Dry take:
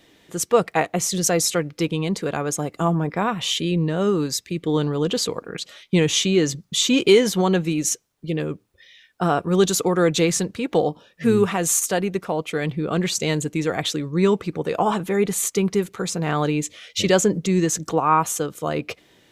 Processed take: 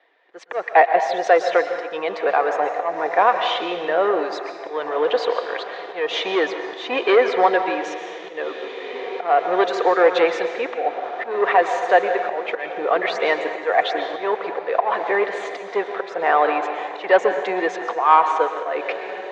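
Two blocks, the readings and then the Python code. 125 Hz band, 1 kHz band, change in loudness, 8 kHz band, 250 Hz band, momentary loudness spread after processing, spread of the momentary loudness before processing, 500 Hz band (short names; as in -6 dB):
under -25 dB, +7.5 dB, +1.0 dB, under -20 dB, -10.0 dB, 13 LU, 8 LU, +2.5 dB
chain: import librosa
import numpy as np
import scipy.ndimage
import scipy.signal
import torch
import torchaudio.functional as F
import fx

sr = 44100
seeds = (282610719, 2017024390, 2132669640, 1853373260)

y = fx.dereverb_blind(x, sr, rt60_s=0.62)
y = fx.echo_diffused(y, sr, ms=1960, feedback_pct=50, wet_db=-15.5)
y = fx.leveller(y, sr, passes=2)
y = fx.auto_swell(y, sr, attack_ms=196.0)
y = fx.quant_dither(y, sr, seeds[0], bits=10, dither='none')
y = fx.cabinet(y, sr, low_hz=430.0, low_slope=24, high_hz=3200.0, hz=(510.0, 720.0, 1000.0, 1800.0, 3000.0), db=(3, 8, 4, 7, -5))
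y = fx.rev_plate(y, sr, seeds[1], rt60_s=1.4, hf_ratio=0.8, predelay_ms=105, drr_db=7.0)
y = y * 10.0 ** (-2.5 / 20.0)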